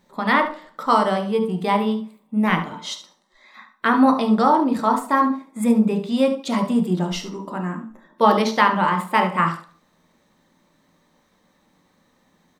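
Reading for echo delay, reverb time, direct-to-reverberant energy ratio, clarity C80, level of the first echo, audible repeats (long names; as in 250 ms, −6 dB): 72 ms, 0.40 s, 3.0 dB, 13.5 dB, −12.0 dB, 1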